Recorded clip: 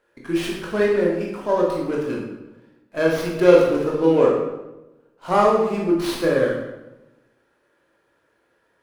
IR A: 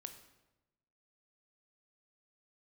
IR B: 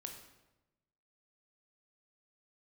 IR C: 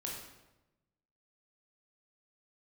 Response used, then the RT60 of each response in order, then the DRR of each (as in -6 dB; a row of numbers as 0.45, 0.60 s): C; 1.0, 1.0, 1.0 s; 7.0, 3.0, -2.5 dB